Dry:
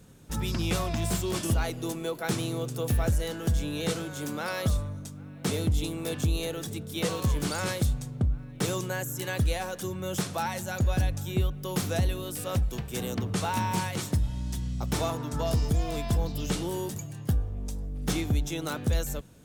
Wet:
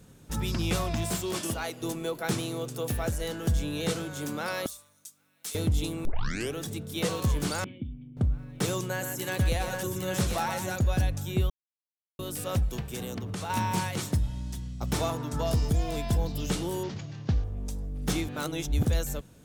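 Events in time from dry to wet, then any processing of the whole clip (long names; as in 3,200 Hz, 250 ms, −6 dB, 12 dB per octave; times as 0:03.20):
0:01.02–0:01.81: high-pass filter 130 Hz → 490 Hz 6 dB per octave
0:02.40–0:03.21: low-shelf EQ 140 Hz −9 dB
0:04.66–0:05.55: first difference
0:06.05: tape start 0.52 s
0:07.64–0:08.17: formant resonators in series i
0:08.86–0:10.76: multi-tap delay 125/808 ms −7/−5.5 dB
0:11.50–0:12.19: silence
0:12.86–0:13.50: downward compressor 5 to 1, threshold −31 dBFS
0:14.12–0:14.81: fade out, to −7 dB
0:15.72–0:16.31: notch filter 1,200 Hz, Q 9
0:16.83–0:17.44: variable-slope delta modulation 32 kbit/s
0:18.28–0:18.85: reverse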